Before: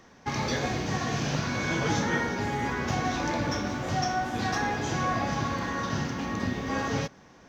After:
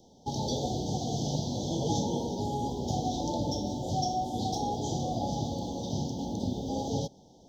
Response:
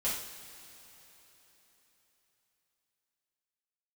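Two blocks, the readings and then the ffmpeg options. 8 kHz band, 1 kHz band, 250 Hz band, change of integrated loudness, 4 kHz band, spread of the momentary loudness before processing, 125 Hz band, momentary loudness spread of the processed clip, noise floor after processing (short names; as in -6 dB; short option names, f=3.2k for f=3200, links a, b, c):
-1.5 dB, -3.5 dB, -1.5 dB, -3.0 dB, -2.5 dB, 4 LU, -1.5 dB, 4 LU, -57 dBFS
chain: -af "asuperstop=centerf=1700:order=20:qfactor=0.74,volume=-1.5dB"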